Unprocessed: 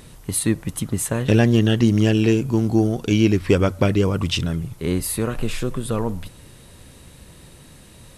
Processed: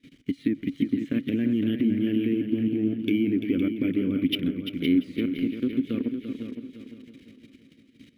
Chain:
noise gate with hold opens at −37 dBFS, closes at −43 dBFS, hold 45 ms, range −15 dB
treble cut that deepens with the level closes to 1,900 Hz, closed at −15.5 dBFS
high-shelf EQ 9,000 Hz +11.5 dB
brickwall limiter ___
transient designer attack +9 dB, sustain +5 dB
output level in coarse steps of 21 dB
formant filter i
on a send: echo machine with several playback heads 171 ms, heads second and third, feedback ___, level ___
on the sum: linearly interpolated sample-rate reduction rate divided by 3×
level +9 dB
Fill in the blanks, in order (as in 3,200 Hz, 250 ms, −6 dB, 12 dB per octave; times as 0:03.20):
−12 dBFS, 41%, −9 dB